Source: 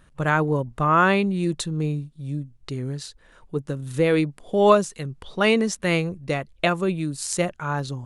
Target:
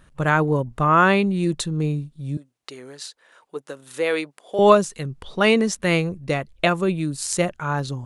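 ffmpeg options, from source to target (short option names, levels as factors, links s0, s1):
-filter_complex "[0:a]asettb=1/sr,asplit=3[s0][s1][s2];[s0]atrim=end=2.374[s3];[s1]atrim=start=2.37:end=4.59,asetpts=PTS-STARTPTS,afade=t=in:d=0.004:c=qsin,afade=t=out:st=2.216:d=0.004:c=qsin,highpass=540[s4];[s2]atrim=start=4.586[s5];[s3][s4]acrossfade=d=0.004:c1=hsin:c2=qsin[s6];[s6][s5]acrossfade=d=0.004:c1=qsin:c2=hsin,volume=1.26"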